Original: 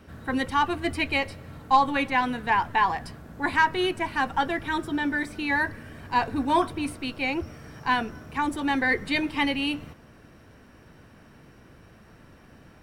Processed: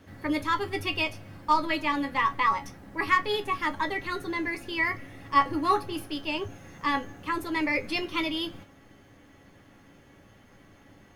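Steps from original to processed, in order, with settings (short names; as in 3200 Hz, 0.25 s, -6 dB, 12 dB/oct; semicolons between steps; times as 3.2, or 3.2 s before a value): resonator 89 Hz, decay 0.17 s, harmonics all; varispeed +15%; resonator 280 Hz, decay 0.18 s, harmonics all, mix 70%; gain +8.5 dB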